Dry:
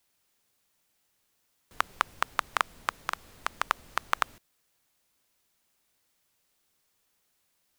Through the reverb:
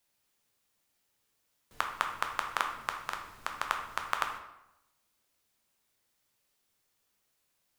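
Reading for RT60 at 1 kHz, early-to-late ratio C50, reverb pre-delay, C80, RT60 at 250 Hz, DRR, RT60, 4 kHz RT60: 0.90 s, 6.5 dB, 7 ms, 9.5 dB, 0.90 s, 3.0 dB, 0.90 s, 0.65 s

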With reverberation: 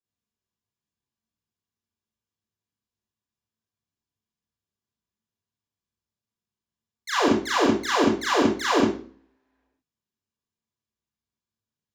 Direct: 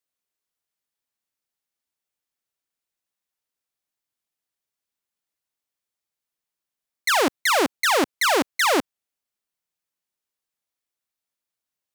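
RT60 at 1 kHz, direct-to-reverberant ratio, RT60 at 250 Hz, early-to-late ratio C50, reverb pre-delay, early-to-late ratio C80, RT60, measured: 0.45 s, -8.5 dB, 0.55 s, 1.5 dB, 28 ms, 6.5 dB, 0.45 s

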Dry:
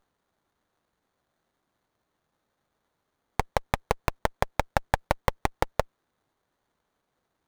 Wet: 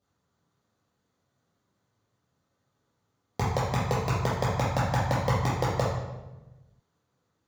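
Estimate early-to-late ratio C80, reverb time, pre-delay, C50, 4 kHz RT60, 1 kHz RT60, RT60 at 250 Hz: 4.0 dB, 1.1 s, 3 ms, 0.0 dB, 0.80 s, 0.95 s, 1.5 s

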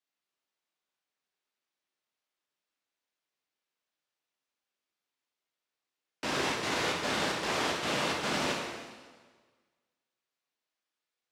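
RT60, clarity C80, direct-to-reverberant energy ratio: 1.5 s, 4.0 dB, -2.0 dB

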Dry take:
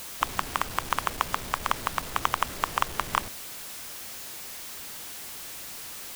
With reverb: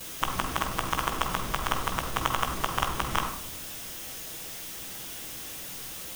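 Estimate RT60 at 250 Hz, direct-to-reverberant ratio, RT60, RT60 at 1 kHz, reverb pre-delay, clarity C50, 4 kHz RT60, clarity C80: 1.6 s, -10.0 dB, 0.90 s, 0.70 s, 6 ms, 7.0 dB, 0.45 s, 10.0 dB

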